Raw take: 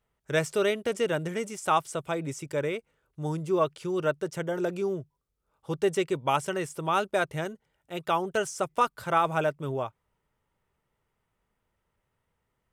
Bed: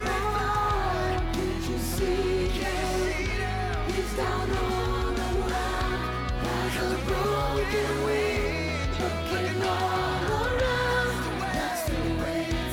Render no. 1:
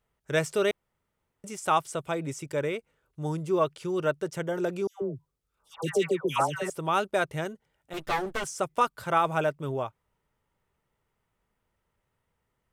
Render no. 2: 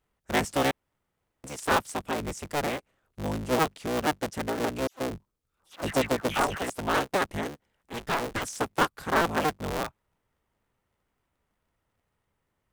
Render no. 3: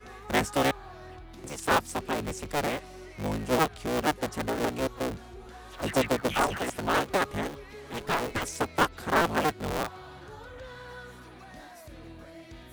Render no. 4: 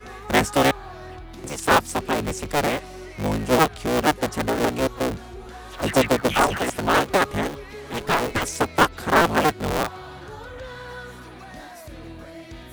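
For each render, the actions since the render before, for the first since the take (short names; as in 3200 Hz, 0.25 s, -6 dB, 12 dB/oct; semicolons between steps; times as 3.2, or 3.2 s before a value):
0.71–1.44 room tone; 4.87–6.7 dispersion lows, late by 0.148 s, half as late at 1200 Hz; 7.93–8.44 minimum comb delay 8.4 ms
cycle switcher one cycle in 3, inverted
add bed -18.5 dB
gain +7 dB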